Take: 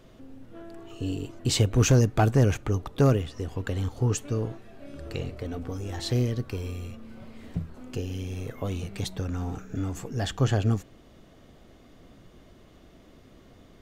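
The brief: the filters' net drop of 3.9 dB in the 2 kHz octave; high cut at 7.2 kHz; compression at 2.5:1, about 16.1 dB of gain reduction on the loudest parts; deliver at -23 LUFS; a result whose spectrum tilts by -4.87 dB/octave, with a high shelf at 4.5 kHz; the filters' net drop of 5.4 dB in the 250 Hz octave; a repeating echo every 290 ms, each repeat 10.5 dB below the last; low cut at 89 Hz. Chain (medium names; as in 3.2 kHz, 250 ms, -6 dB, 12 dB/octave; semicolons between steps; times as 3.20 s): high-pass 89 Hz; low-pass 7.2 kHz; peaking EQ 250 Hz -7 dB; peaking EQ 2 kHz -7.5 dB; treble shelf 4.5 kHz +9 dB; compression 2.5:1, threshold -44 dBFS; feedback delay 290 ms, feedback 30%, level -10.5 dB; trim +20 dB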